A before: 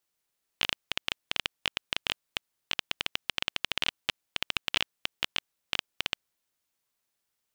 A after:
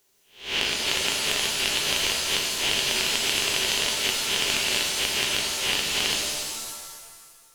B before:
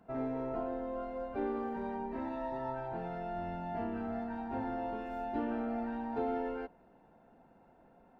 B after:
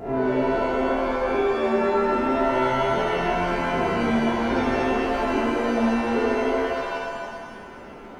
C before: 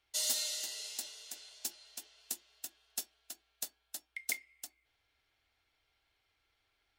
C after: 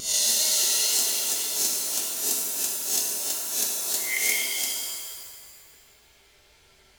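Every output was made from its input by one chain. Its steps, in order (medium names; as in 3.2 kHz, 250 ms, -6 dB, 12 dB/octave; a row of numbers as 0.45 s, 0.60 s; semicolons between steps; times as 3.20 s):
reverse spectral sustain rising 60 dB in 0.41 s; graphic EQ with 31 bands 400 Hz +11 dB, 1.25 kHz -6 dB, 6.3 kHz +4 dB; wow and flutter 42 cents; compression 6:1, threshold -37 dBFS; pitch-shifted reverb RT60 1.6 s, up +7 st, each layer -2 dB, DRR -0.5 dB; normalise loudness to -23 LUFS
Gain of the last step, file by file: +11.5 dB, +12.5 dB, +13.5 dB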